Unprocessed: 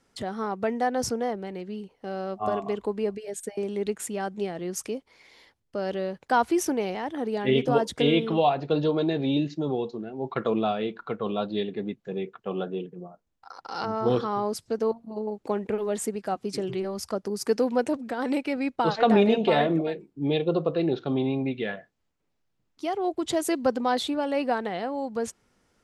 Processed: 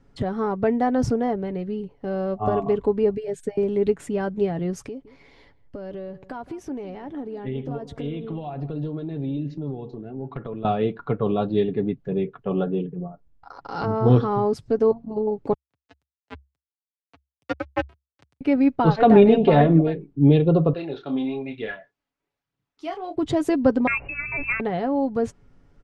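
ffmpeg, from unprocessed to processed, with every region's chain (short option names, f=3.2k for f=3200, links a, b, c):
-filter_complex "[0:a]asettb=1/sr,asplit=3[a][b][c];[a]atrim=end=4.884[d];[b]atrim=start=4.88:end=10.65,asetpts=PTS-STARTPTS,afade=t=in:d=0.004:c=qsin,afade=t=out:st=5.766:d=0.004:c=qsin,acompressor=threshold=-41dB:ratio=3:attack=3.2:release=140:knee=1:detection=peak,asplit=2[e][f];[f]adelay=165,lowpass=f=1.3k:p=1,volume=-16dB,asplit=2[g][h];[h]adelay=165,lowpass=f=1.3k:p=1,volume=0.28,asplit=2[i][j];[j]adelay=165,lowpass=f=1.3k:p=1,volume=0.28[k];[e][g][i][k]amix=inputs=4:normalize=0,atrim=end_sample=254457[l];[c]atrim=start=10.646[m];[d][l]acrossfade=d=0.004:c1=hsin:c2=qsin[n];[n][m]acrossfade=d=0.004:c1=qsin:c2=hsin,asettb=1/sr,asplit=3[o][p][q];[o]atrim=end=15.534[r];[p]atrim=start=15.53:end=18.41,asetpts=PTS-STARTPTS,afade=t=in:d=0.004:c=qsin,afade=t=out:st=2.876:d=0.004:c=qsin,highpass=400,acrusher=bits=2:mix=0:aa=0.5,afreqshift=68[s];[q]atrim=start=18.406[t];[r][s]acrossfade=d=0.004:c1=hsin:c2=qsin[u];[u][t]acrossfade=d=0.004:c1=qsin:c2=hsin,asettb=1/sr,asplit=3[v][w][x];[v]atrim=end=20.734[y];[w]atrim=start=20.73:end=23.16,asetpts=PTS-STARTPTS,afade=t=in:d=0.004:c=qsin,afade=t=out:st=2.426:d=0.004:c=qsin,highpass=f=1.4k:p=1,aphaser=in_gain=1:out_gain=1:delay=4.2:decay=0.43:speed=1.1:type=triangular,asplit=2[z][aa];[aa]adelay=27,volume=-7dB[ab];[z][ab]amix=inputs=2:normalize=0,atrim=end_sample=107163[ac];[x]atrim=start=23.156[ad];[y][ac]acrossfade=d=0.004:c1=hsin:c2=qsin[ae];[ae][ad]acrossfade=d=0.004:c1=qsin:c2=hsin,asettb=1/sr,asplit=3[af][ag][ah];[af]atrim=end=23.874[ai];[ag]atrim=start=23.87:end=24.6,asetpts=PTS-STARTPTS,afade=t=in:d=0.004:c=qsin,afade=t=out:st=0.726:d=0.004:c=qsin,lowpass=f=2.5k:t=q:w=0.5098,lowpass=f=2.5k:t=q:w=0.6013,lowpass=f=2.5k:t=q:w=0.9,lowpass=f=2.5k:t=q:w=2.563,afreqshift=-2900,aeval=exprs='val(0)+0.00112*(sin(2*PI*60*n/s)+sin(2*PI*2*60*n/s)/2+sin(2*PI*3*60*n/s)/3+sin(2*PI*4*60*n/s)/4+sin(2*PI*5*60*n/s)/5)':c=same[aj];[ah]atrim=start=24.596[ak];[ai][aj]acrossfade=d=0.004:c1=hsin:c2=qsin[al];[al][ak]acrossfade=d=0.004:c1=qsin:c2=hsin,aemphasis=mode=reproduction:type=riaa,aecho=1:1:7.1:0.4,volume=2dB"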